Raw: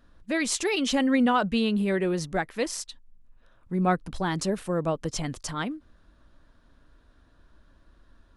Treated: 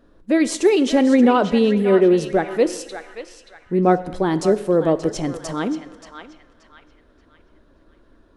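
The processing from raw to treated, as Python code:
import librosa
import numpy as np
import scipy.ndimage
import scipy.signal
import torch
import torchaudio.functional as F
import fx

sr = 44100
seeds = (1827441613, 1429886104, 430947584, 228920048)

p1 = fx.peak_eq(x, sr, hz=400.0, db=13.5, octaves=1.7)
p2 = p1 + fx.echo_banded(p1, sr, ms=579, feedback_pct=41, hz=2200.0, wet_db=-7, dry=0)
y = fx.rev_plate(p2, sr, seeds[0], rt60_s=1.2, hf_ratio=0.85, predelay_ms=0, drr_db=13.0)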